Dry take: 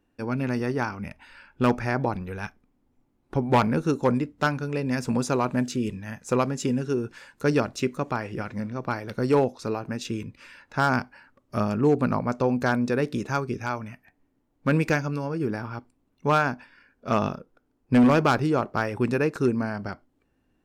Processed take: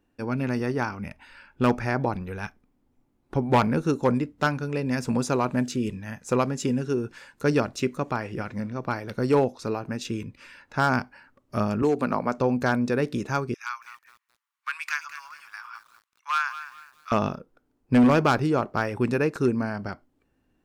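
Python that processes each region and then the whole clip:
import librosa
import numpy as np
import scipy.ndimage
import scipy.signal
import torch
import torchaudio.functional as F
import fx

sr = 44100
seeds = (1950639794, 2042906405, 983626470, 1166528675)

y = fx.chain(x, sr, fx.peak_eq(hz=83.0, db=-14.5, octaves=1.9),
    fx.band_squash(depth_pct=100), at=(11.82, 12.38))
y = fx.chain(y, sr, fx.ellip_highpass(hz=1100.0, order=4, stop_db=60),
    fx.echo_crushed(ms=210, feedback_pct=35, bits=8, wet_db=-12.5), at=(13.54, 17.12))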